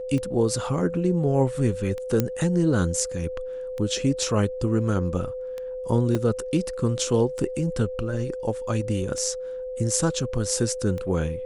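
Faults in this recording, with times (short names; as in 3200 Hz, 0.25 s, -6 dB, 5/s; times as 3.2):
tick 33 1/3 rpm -20 dBFS
tone 510 Hz -30 dBFS
2.2 pop -8 dBFS
6.15 gap 2 ms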